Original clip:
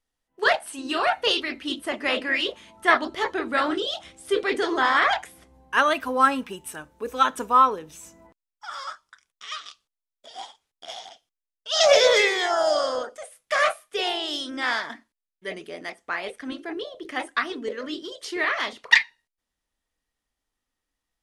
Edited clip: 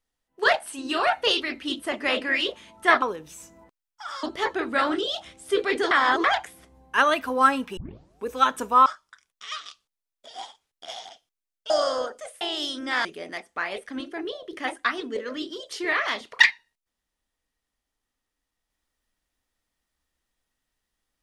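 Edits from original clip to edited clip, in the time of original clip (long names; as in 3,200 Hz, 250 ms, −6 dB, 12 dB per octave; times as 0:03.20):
0:04.70–0:05.03: reverse
0:06.56: tape start 0.48 s
0:07.65–0:08.86: move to 0:03.02
0:11.70–0:12.67: remove
0:13.38–0:14.12: remove
0:14.76–0:15.57: remove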